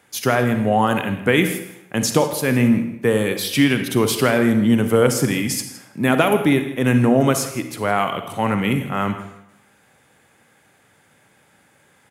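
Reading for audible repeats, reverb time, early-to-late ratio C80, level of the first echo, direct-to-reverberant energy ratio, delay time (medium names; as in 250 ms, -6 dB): 1, 0.85 s, 10.5 dB, -17.5 dB, 7.5 dB, 164 ms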